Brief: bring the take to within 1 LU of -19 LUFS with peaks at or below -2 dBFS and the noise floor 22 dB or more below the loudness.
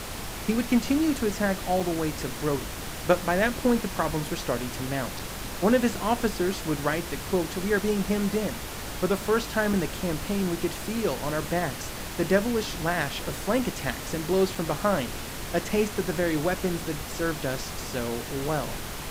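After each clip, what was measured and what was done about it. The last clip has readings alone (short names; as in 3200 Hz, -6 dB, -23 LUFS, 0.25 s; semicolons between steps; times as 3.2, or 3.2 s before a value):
dropouts 4; longest dropout 4.4 ms; noise floor -36 dBFS; noise floor target -50 dBFS; loudness -27.5 LUFS; peak -9.0 dBFS; loudness target -19.0 LUFS
-> interpolate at 1.8/5.19/9.73/14.55, 4.4 ms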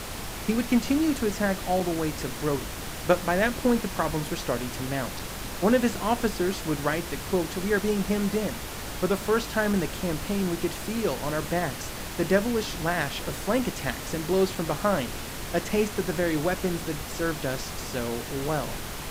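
dropouts 0; noise floor -36 dBFS; noise floor target -50 dBFS
-> noise print and reduce 14 dB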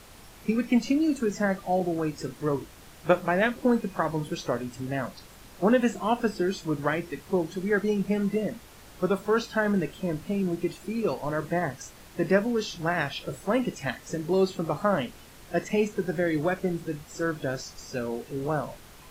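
noise floor -50 dBFS; loudness -28.0 LUFS; peak -9.0 dBFS; loudness target -19.0 LUFS
-> gain +9 dB; limiter -2 dBFS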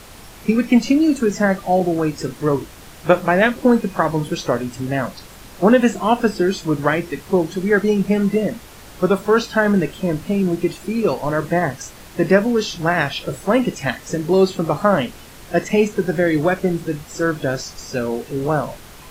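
loudness -19.0 LUFS; peak -2.0 dBFS; noise floor -41 dBFS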